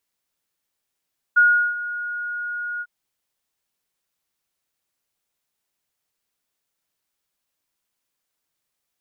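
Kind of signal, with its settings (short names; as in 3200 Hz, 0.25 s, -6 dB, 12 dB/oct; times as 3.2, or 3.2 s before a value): ADSR sine 1440 Hz, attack 16 ms, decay 0.367 s, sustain -15.5 dB, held 1.45 s, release 49 ms -10 dBFS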